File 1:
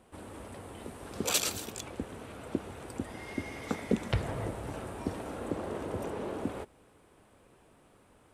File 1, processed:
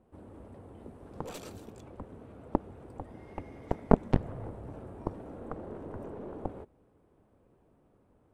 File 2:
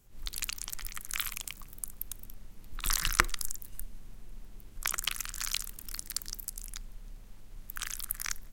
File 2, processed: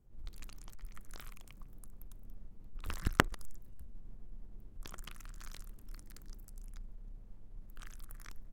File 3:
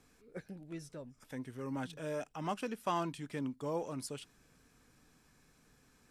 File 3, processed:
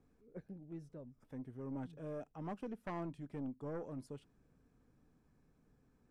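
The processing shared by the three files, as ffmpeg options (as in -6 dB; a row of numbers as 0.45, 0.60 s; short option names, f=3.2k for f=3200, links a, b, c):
-af "tiltshelf=f=1.3k:g=10,aeval=exprs='0.891*(cos(1*acos(clip(val(0)/0.891,-1,1)))-cos(1*PI/2))+0.0794*(cos(3*acos(clip(val(0)/0.891,-1,1)))-cos(3*PI/2))+0.178*(cos(6*acos(clip(val(0)/0.891,-1,1)))-cos(6*PI/2))+0.126*(cos(7*acos(clip(val(0)/0.891,-1,1)))-cos(7*PI/2))+0.0794*(cos(8*acos(clip(val(0)/0.891,-1,1)))-cos(8*PI/2))':c=same"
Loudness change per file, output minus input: 0.0, -7.5, -6.0 LU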